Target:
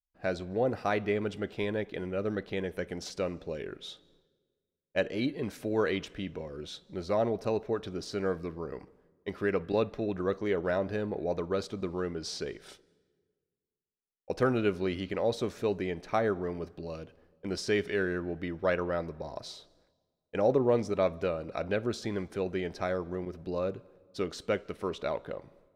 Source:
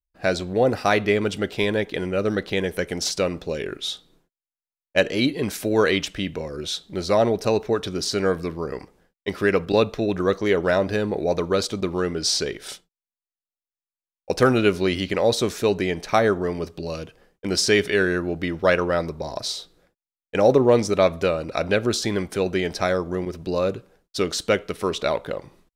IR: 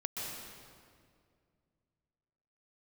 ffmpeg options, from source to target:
-filter_complex "[0:a]highshelf=f=3.3k:g=-11,asplit=2[a][b];[1:a]atrim=start_sample=2205,asetrate=61740,aresample=44100,adelay=57[c];[b][c]afir=irnorm=-1:irlink=0,volume=-24dB[d];[a][d]amix=inputs=2:normalize=0,volume=-9dB"

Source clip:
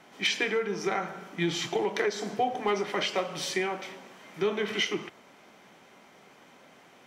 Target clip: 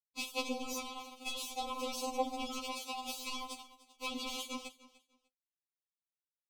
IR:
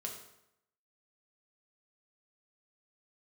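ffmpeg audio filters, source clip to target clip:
-filter_complex "[0:a]bandreject=f=60:t=h:w=6,bandreject=f=120:t=h:w=6,bandreject=f=180:t=h:w=6,bandreject=f=240:t=h:w=6,bandreject=f=300:t=h:w=6,bandreject=f=360:t=h:w=6,bandreject=f=420:t=h:w=6,asplit=2[a][b];[b]acompressor=threshold=-34dB:ratio=6,volume=0dB[c];[a][c]amix=inputs=2:normalize=0,alimiter=limit=-22.5dB:level=0:latency=1:release=50,acrossover=split=370|7200[d][e][f];[d]acompressor=threshold=-38dB:ratio=4[g];[e]acompressor=threshold=-37dB:ratio=4[h];[f]acompressor=threshold=-56dB:ratio=4[i];[g][h][i]amix=inputs=3:normalize=0,acrusher=bits=4:mix=0:aa=0.5,aecho=1:1:324|648:0.112|0.0224,asplit=2[j][k];[1:a]atrim=start_sample=2205,atrim=end_sample=3087[l];[k][l]afir=irnorm=-1:irlink=0,volume=-10dB[m];[j][m]amix=inputs=2:normalize=0,asetrate=48000,aresample=44100,asuperstop=centerf=1700:order=8:qfactor=1.5,afftfilt=real='re*3.46*eq(mod(b,12),0)':imag='im*3.46*eq(mod(b,12),0)':win_size=2048:overlap=0.75,volume=3dB"

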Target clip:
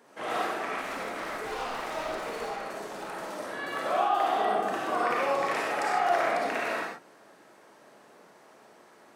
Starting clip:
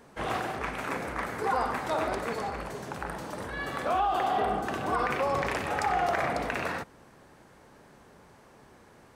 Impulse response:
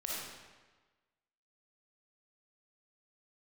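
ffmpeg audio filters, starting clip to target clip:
-filter_complex "[0:a]highpass=270,asettb=1/sr,asplit=3[a][b][c];[a]atrim=end=0.784[d];[b]atrim=start=0.78:end=3.16,asetpts=PTS-STARTPTS,afade=t=in:d=0.004:c=qsin,afade=t=out:st=2.376:d=0.004:c=qsin,asoftclip=type=hard:threshold=-33.5dB[e];[c]atrim=start=3.156[f];[d][e]acrossfade=d=0.004:c1=hsin:c2=qsin[g];[g][f]acrossfade=d=0.004:c1=qsin:c2=hsin[h];[1:a]atrim=start_sample=2205,afade=t=out:st=0.21:d=0.01,atrim=end_sample=9702[i];[h][i]afir=irnorm=-1:irlink=0"

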